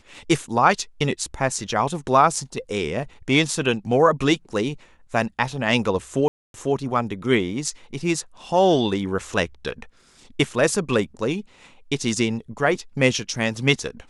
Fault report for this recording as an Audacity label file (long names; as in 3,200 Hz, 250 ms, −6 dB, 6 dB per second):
6.280000	6.540000	drop-out 262 ms